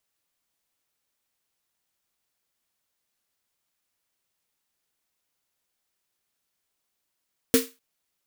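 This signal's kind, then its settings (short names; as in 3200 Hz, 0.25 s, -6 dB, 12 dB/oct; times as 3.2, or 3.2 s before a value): snare drum length 0.25 s, tones 260 Hz, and 460 Hz, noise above 1200 Hz, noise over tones -4.5 dB, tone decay 0.22 s, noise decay 0.28 s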